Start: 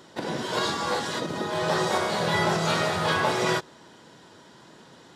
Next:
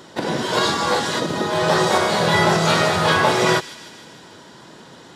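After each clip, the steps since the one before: thin delay 0.153 s, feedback 62%, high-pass 2600 Hz, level -13 dB; gain +7.5 dB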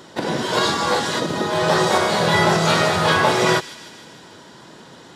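nothing audible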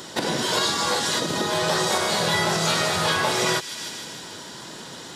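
high shelf 3300 Hz +11 dB; compressor 2.5:1, threshold -26 dBFS, peak gain reduction 10.5 dB; gain +2 dB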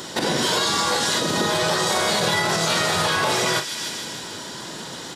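doubler 39 ms -10.5 dB; limiter -15.5 dBFS, peak gain reduction 6 dB; gain +4 dB

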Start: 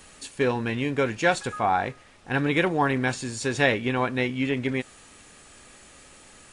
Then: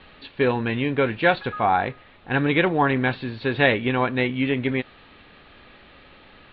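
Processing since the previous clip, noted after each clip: steep low-pass 4100 Hz 72 dB/oct; gain +3 dB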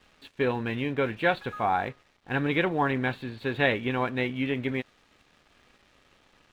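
crossover distortion -50.5 dBFS; gain -5.5 dB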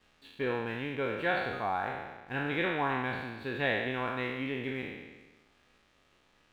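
spectral trails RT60 1.26 s; gain -8.5 dB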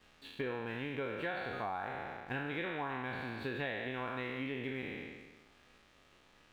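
compressor, threshold -38 dBFS, peak gain reduction 13 dB; gain +2.5 dB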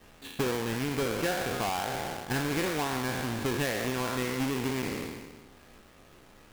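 half-waves squared off; gain +4 dB

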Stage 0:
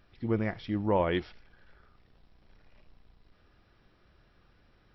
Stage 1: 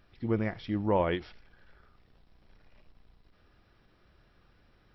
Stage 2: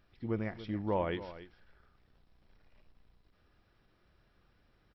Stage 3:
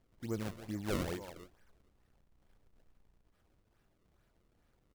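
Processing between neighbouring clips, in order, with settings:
ending taper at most 230 dB/s
echo 0.284 s -14.5 dB; gain -5.5 dB
decimation with a swept rate 31×, swing 160% 2.3 Hz; gain -3.5 dB

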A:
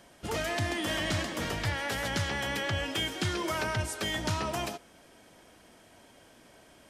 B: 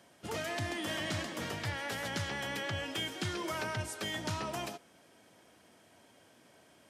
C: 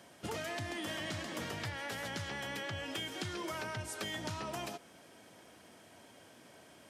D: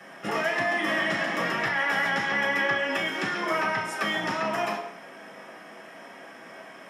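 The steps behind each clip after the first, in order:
HPF 85 Hz 24 dB/oct; gain -5 dB
compressor, threshold -41 dBFS, peak gain reduction 9.5 dB; gain +4 dB
reverb RT60 0.65 s, pre-delay 3 ms, DRR -6.5 dB

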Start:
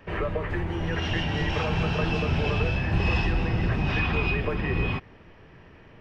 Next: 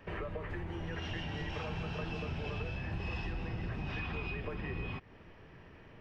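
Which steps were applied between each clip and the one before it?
compressor 2.5:1, threshold -35 dBFS, peak gain reduction 11 dB; gain -4.5 dB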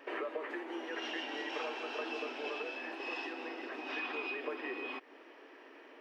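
brick-wall FIR high-pass 250 Hz; gain +3 dB

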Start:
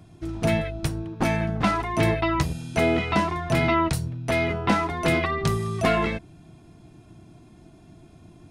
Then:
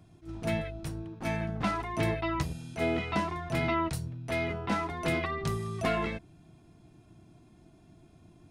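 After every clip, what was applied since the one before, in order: attack slew limiter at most 220 dB/s; gain -7.5 dB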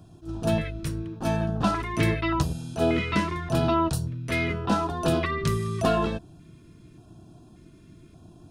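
LFO notch square 0.86 Hz 770–2100 Hz; gain +7 dB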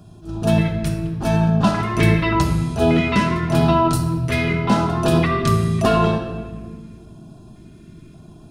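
shoebox room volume 1900 m³, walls mixed, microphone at 1.3 m; gain +5 dB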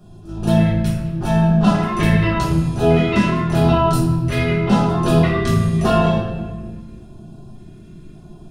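shoebox room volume 35 m³, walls mixed, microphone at 1 m; gain -6 dB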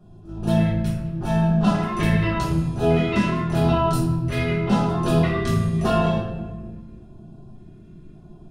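mismatched tape noise reduction decoder only; gain -4.5 dB

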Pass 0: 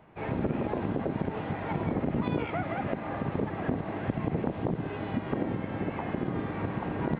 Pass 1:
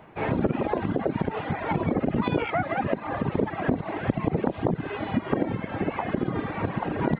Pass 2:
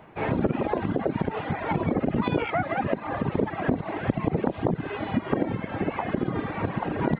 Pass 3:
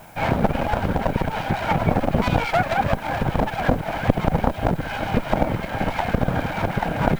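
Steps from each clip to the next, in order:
reverb removal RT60 1.5 s; low shelf 230 Hz -4 dB; gain +8.5 dB
nothing audible
minimum comb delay 1.3 ms; added noise blue -60 dBFS; gain +7 dB

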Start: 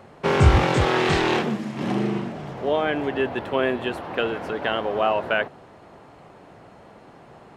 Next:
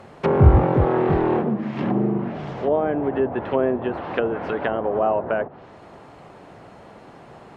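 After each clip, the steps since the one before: treble ducked by the level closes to 850 Hz, closed at -20.5 dBFS; gain +3 dB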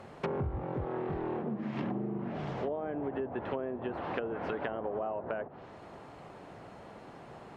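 compressor 16:1, threshold -26 dBFS, peak gain reduction 20.5 dB; gain -5 dB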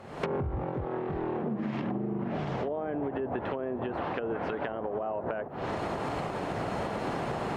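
recorder AGC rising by 61 dB/s

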